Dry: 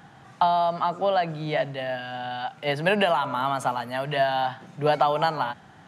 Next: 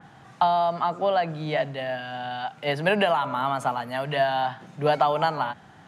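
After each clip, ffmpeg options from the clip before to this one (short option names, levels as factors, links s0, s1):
-af "adynamicequalizer=threshold=0.0158:dfrequency=3000:dqfactor=0.7:tfrequency=3000:tqfactor=0.7:attack=5:release=100:ratio=0.375:range=2:mode=cutabove:tftype=highshelf"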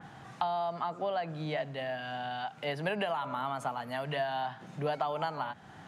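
-af "acompressor=threshold=0.0126:ratio=2"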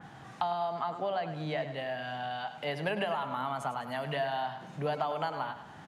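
-af "aecho=1:1:103|206|309|412|515:0.282|0.13|0.0596|0.0274|0.0126"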